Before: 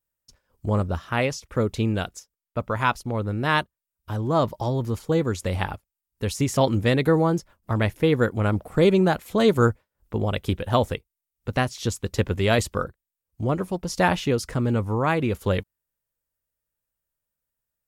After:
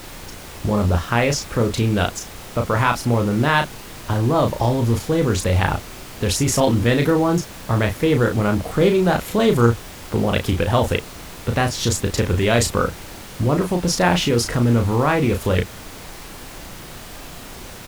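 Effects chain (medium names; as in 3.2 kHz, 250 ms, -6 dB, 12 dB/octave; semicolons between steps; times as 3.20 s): in parallel at +1.5 dB: compressor with a negative ratio -28 dBFS; on the sum: added noise pink -37 dBFS; doubling 34 ms -5.5 dB; loudspeaker Doppler distortion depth 0.11 ms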